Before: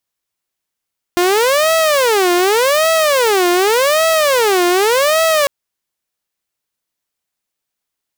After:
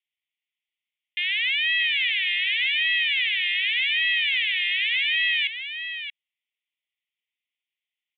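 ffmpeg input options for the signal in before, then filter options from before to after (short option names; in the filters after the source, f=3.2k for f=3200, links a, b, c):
-f lavfi -i "aevalsrc='0.398*(2*mod((500.5*t-149.5/(2*PI*0.86)*sin(2*PI*0.86*t)),1)-1)':d=4.3:s=44100"
-filter_complex "[0:a]asuperpass=centerf=2600:order=12:qfactor=1.6,asplit=2[a][b];[b]aecho=0:1:628:0.335[c];[a][c]amix=inputs=2:normalize=0"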